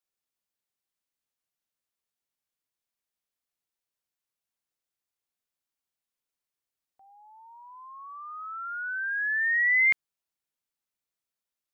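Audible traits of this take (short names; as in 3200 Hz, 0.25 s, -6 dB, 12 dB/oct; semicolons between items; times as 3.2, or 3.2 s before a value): noise floor -90 dBFS; spectral tilt +11.0 dB/oct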